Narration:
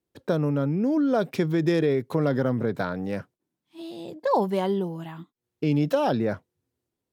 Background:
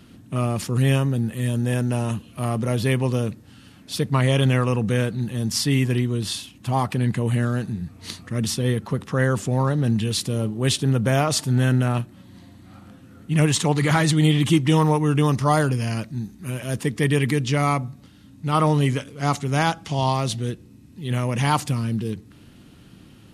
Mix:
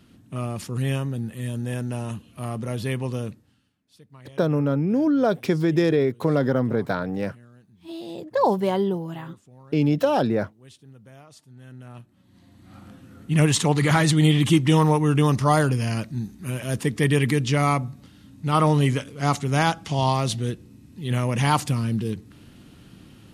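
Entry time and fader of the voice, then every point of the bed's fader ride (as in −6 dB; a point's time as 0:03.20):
4.10 s, +2.5 dB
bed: 0:03.30 −6 dB
0:03.78 −28 dB
0:11.56 −28 dB
0:12.80 0 dB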